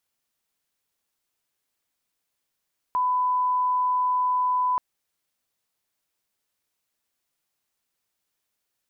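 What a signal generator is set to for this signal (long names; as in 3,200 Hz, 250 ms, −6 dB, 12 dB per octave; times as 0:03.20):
line-up tone −20 dBFS 1.83 s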